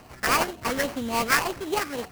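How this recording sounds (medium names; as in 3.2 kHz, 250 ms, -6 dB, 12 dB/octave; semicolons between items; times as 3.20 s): phasing stages 8, 3.6 Hz, lowest notch 710–2300 Hz; aliases and images of a low sample rate 3.6 kHz, jitter 20%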